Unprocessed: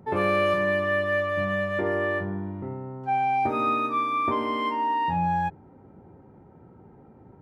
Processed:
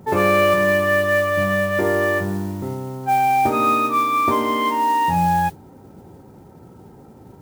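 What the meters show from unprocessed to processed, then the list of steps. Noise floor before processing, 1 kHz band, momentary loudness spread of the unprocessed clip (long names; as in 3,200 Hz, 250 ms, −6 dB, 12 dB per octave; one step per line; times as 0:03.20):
−52 dBFS, +7.0 dB, 10 LU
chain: noise that follows the level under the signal 22 dB
level +7 dB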